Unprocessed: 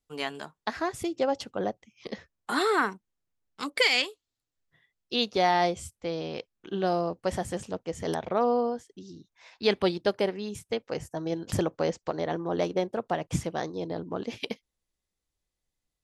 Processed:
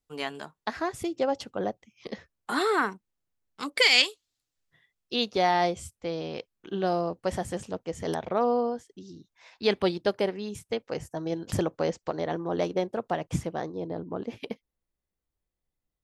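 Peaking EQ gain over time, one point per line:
peaking EQ 5.7 kHz 2.8 oct
3.65 s -1.5 dB
4.07 s +10 dB
5.14 s -1 dB
13.21 s -1 dB
13.74 s -11 dB

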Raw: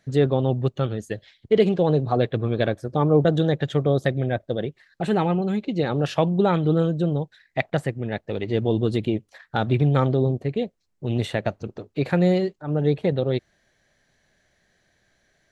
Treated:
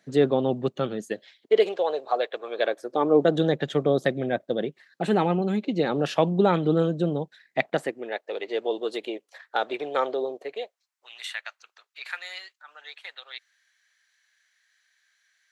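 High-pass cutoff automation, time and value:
high-pass 24 dB/octave
1.01 s 180 Hz
1.83 s 520 Hz
2.47 s 520 Hz
3.42 s 180 Hz
7.65 s 180 Hz
8.17 s 430 Hz
10.44 s 430 Hz
11.13 s 1.3 kHz

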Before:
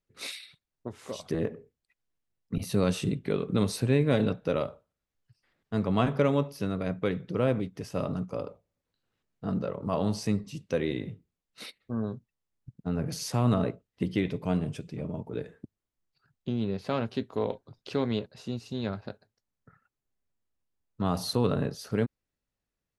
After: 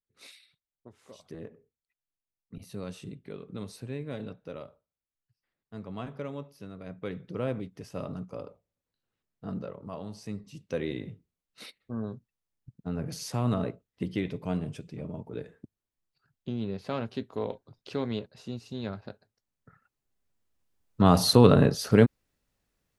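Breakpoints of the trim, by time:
6.76 s -13 dB
7.20 s -5.5 dB
9.61 s -5.5 dB
10.09 s -13 dB
10.79 s -3 dB
19.09 s -3 dB
21.11 s +9 dB

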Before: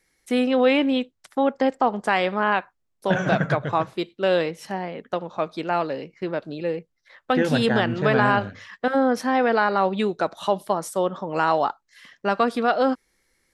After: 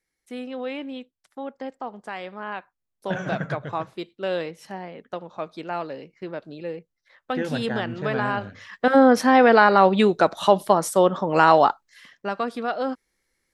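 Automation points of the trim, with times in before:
2.35 s -13 dB
3.07 s -6 dB
8.37 s -6 dB
8.97 s +5.5 dB
11.68 s +5.5 dB
12.33 s -6 dB

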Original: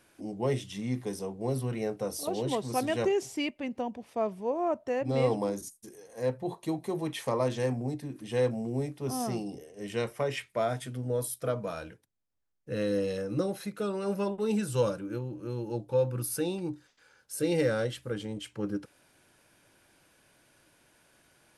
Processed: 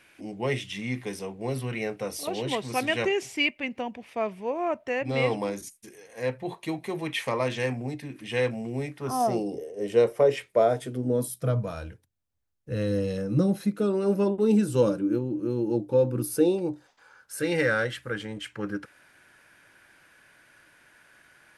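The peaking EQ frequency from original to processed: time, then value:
peaking EQ +13 dB 1.2 oct
8.89 s 2.3 kHz
9.39 s 470 Hz
10.82 s 470 Hz
11.81 s 80 Hz
12.70 s 80 Hz
13.89 s 290 Hz
16.24 s 290 Hz
17.41 s 1.7 kHz

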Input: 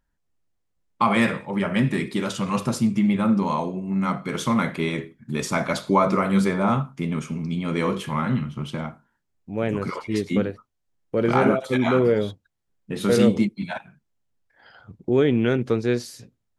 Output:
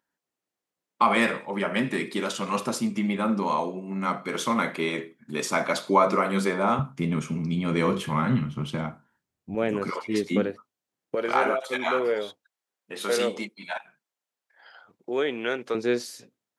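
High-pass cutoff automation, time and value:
290 Hz
from 6.79 s 80 Hz
from 9.55 s 210 Hz
from 11.15 s 580 Hz
from 15.75 s 290 Hz

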